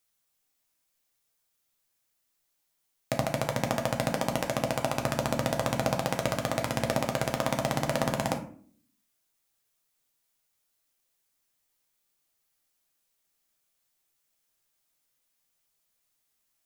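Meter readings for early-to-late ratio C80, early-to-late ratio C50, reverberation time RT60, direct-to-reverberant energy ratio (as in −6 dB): 15.0 dB, 10.5 dB, 0.50 s, 2.5 dB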